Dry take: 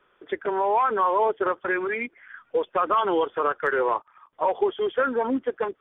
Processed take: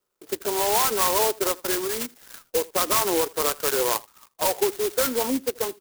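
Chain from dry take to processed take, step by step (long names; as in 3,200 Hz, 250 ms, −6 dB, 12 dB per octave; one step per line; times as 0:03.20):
noise gate −53 dBFS, range −15 dB
single-tap delay 81 ms −23 dB
converter with an unsteady clock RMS 0.15 ms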